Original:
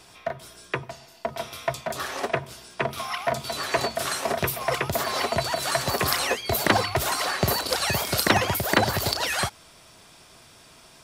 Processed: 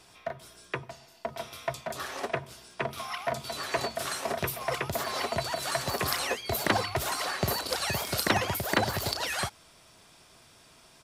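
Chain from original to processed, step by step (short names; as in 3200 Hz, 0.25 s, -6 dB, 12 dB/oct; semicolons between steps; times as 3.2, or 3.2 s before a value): downsampling 32000 Hz; gain -5.5 dB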